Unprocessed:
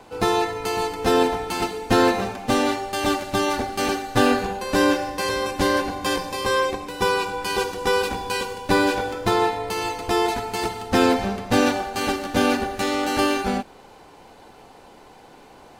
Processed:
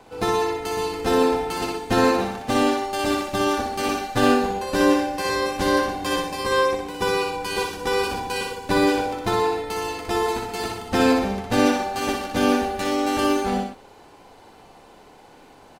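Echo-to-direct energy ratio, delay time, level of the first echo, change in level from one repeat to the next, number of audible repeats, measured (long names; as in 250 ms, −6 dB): −2.5 dB, 61 ms, −4.0 dB, −4.5 dB, 2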